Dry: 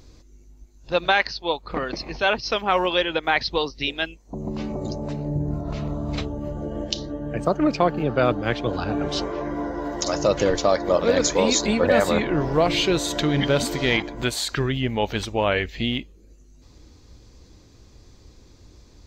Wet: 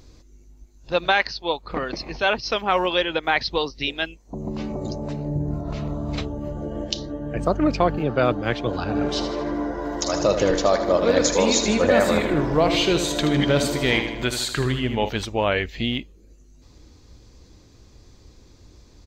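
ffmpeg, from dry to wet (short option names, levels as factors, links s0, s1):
-filter_complex "[0:a]asettb=1/sr,asplit=3[s0][s1][s2];[s0]atrim=end=7.364[s3];[s1]atrim=start=7.36:end=7.97,asetpts=PTS-STARTPTS,afade=t=in:d=0.004:c=qsin,afade=t=out:st=0.606:d=0.004:c=qsin,aeval=exprs='val(0)+0.0355*(sin(2*PI*50*n/s)+sin(2*PI*2*50*n/s)/2+sin(2*PI*3*50*n/s)/3+sin(2*PI*4*50*n/s)/4+sin(2*PI*5*50*n/s)/5)':c=same[s4];[s2]atrim=start=7.966[s5];[s3][s4]acrossfade=d=0.004:c1=hsin:c2=qsin[s6];[s6][s5]acrossfade=d=0.004:c1=qsin:c2=hsin,asplit=3[s7][s8][s9];[s7]afade=t=out:st=8.94:d=0.02[s10];[s8]aecho=1:1:78|156|234|312|390|468:0.376|0.192|0.0978|0.0499|0.0254|0.013,afade=t=in:st=8.94:d=0.02,afade=t=out:st=15.08:d=0.02[s11];[s9]afade=t=in:st=15.08:d=0.02[s12];[s10][s11][s12]amix=inputs=3:normalize=0"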